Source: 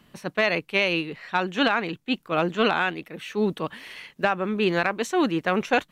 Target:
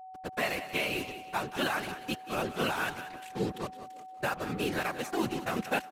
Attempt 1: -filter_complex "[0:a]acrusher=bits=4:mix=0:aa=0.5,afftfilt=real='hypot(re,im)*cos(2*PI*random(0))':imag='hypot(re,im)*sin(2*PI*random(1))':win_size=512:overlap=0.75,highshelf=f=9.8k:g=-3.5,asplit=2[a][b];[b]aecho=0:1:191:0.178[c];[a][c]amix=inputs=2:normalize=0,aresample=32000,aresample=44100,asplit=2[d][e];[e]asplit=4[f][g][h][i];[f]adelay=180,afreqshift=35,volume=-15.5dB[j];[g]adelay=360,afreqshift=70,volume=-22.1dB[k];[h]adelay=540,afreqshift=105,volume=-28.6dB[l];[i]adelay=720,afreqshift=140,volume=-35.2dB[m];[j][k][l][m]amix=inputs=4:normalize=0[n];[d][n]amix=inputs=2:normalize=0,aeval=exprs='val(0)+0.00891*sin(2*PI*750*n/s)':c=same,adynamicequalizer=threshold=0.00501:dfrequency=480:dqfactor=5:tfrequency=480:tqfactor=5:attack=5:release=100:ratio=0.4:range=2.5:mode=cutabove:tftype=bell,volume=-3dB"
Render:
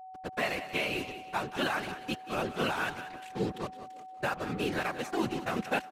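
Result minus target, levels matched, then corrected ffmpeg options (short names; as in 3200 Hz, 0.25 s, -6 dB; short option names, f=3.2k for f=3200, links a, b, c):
8000 Hz band -3.0 dB
-filter_complex "[0:a]acrusher=bits=4:mix=0:aa=0.5,afftfilt=real='hypot(re,im)*cos(2*PI*random(0))':imag='hypot(re,im)*sin(2*PI*random(1))':win_size=512:overlap=0.75,highshelf=f=9.8k:g=6.5,asplit=2[a][b];[b]aecho=0:1:191:0.178[c];[a][c]amix=inputs=2:normalize=0,aresample=32000,aresample=44100,asplit=2[d][e];[e]asplit=4[f][g][h][i];[f]adelay=180,afreqshift=35,volume=-15.5dB[j];[g]adelay=360,afreqshift=70,volume=-22.1dB[k];[h]adelay=540,afreqshift=105,volume=-28.6dB[l];[i]adelay=720,afreqshift=140,volume=-35.2dB[m];[j][k][l][m]amix=inputs=4:normalize=0[n];[d][n]amix=inputs=2:normalize=0,aeval=exprs='val(0)+0.00891*sin(2*PI*750*n/s)':c=same,adynamicequalizer=threshold=0.00501:dfrequency=480:dqfactor=5:tfrequency=480:tqfactor=5:attack=5:release=100:ratio=0.4:range=2.5:mode=cutabove:tftype=bell,volume=-3dB"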